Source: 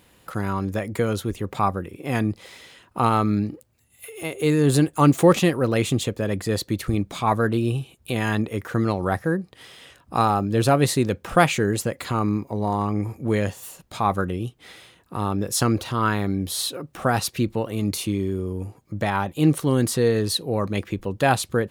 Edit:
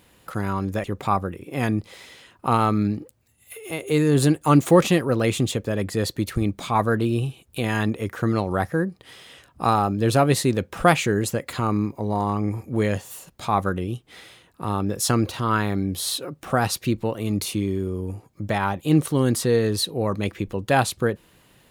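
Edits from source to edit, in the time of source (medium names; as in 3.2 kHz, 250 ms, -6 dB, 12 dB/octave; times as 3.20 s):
0.84–1.36 s: delete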